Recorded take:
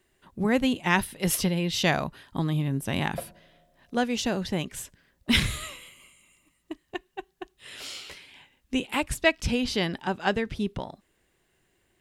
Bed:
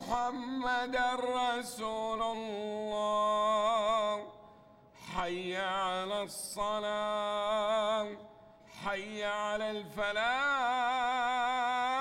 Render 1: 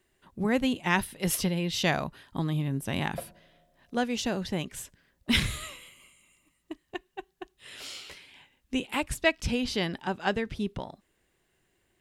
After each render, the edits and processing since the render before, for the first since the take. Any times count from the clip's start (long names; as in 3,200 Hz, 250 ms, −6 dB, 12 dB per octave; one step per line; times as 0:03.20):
level −2.5 dB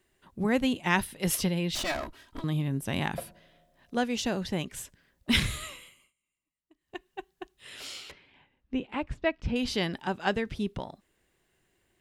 0:01.75–0:02.44: lower of the sound and its delayed copy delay 3.1 ms
0:05.79–0:07.08: duck −23 dB, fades 0.34 s
0:08.11–0:09.56: head-to-tape spacing loss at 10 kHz 32 dB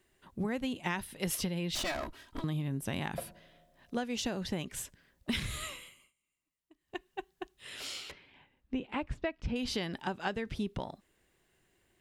downward compressor 12 to 1, threshold −30 dBFS, peak gain reduction 12 dB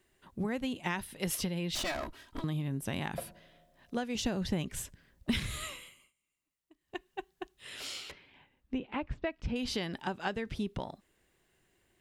0:04.15–0:05.38: low-shelf EQ 180 Hz +8.5 dB
0:08.78–0:09.27: high-frequency loss of the air 110 metres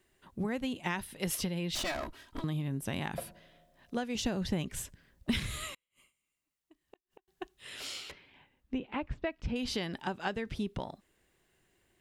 0:05.74–0:07.28: gate with flip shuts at −39 dBFS, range −39 dB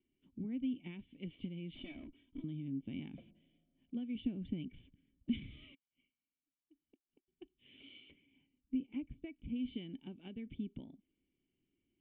formant resonators in series i